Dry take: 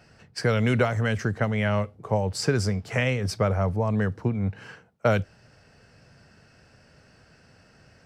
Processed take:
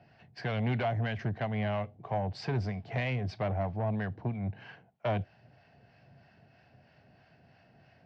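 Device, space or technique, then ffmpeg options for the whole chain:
guitar amplifier with harmonic tremolo: -filter_complex "[0:a]acrossover=split=730[link_01][link_02];[link_01]aeval=exprs='val(0)*(1-0.5/2+0.5/2*cos(2*PI*3.1*n/s))':channel_layout=same[link_03];[link_02]aeval=exprs='val(0)*(1-0.5/2-0.5/2*cos(2*PI*3.1*n/s))':channel_layout=same[link_04];[link_03][link_04]amix=inputs=2:normalize=0,asoftclip=type=tanh:threshold=-23dB,highpass=79,equalizer=frequency=130:width_type=q:width=4:gain=4,equalizer=frequency=480:width_type=q:width=4:gain=-6,equalizer=frequency=710:width_type=q:width=4:gain=9,equalizer=frequency=1300:width_type=q:width=4:gain=-8,lowpass=frequency=3900:width=0.5412,lowpass=frequency=3900:width=1.3066,volume=-3dB"

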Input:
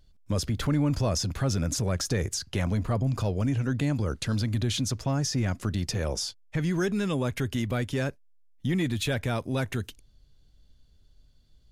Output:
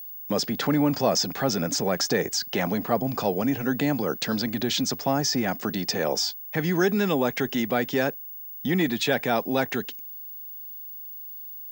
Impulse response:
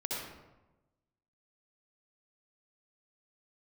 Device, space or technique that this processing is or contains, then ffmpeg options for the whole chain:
old television with a line whistle: -af "highpass=frequency=180:width=0.5412,highpass=frequency=180:width=1.3066,equalizer=frequency=450:width_type=q:width=4:gain=3,equalizer=frequency=780:width_type=q:width=4:gain=9,equalizer=frequency=1800:width_type=q:width=4:gain=4,equalizer=frequency=5100:width_type=q:width=4:gain=4,lowpass=frequency=7500:width=0.5412,lowpass=frequency=7500:width=1.3066,aeval=exprs='val(0)+0.0158*sin(2*PI*15625*n/s)':channel_layout=same,highshelf=frequency=12000:gain=-6,volume=4.5dB"

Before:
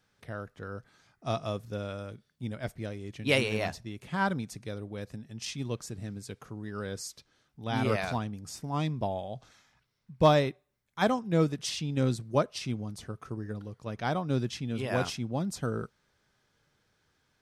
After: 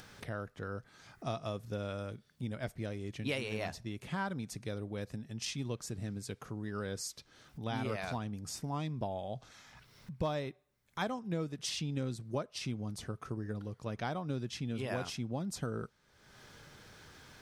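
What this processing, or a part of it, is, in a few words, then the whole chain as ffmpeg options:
upward and downward compression: -af "acompressor=mode=upward:threshold=-40dB:ratio=2.5,acompressor=threshold=-34dB:ratio=4"

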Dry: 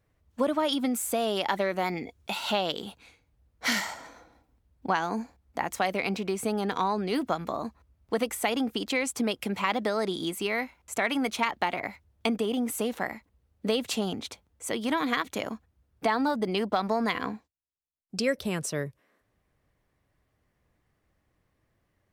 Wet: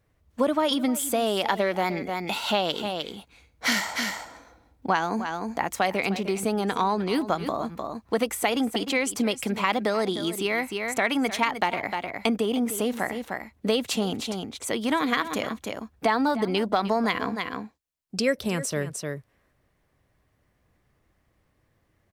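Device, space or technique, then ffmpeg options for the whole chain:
ducked delay: -filter_complex "[0:a]asplit=3[link_01][link_02][link_03];[link_02]adelay=305,volume=-4dB[link_04];[link_03]apad=whole_len=989137[link_05];[link_04][link_05]sidechaincompress=threshold=-40dB:ratio=8:attack=27:release=109[link_06];[link_01][link_06]amix=inputs=2:normalize=0,volume=3dB"

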